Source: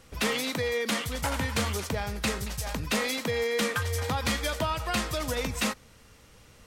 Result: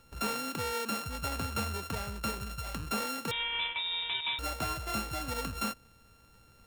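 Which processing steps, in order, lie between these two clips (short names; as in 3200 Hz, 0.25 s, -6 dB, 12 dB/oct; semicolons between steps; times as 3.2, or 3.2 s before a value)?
sample sorter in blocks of 32 samples; 3.31–4.39 inverted band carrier 3700 Hz; gain -5.5 dB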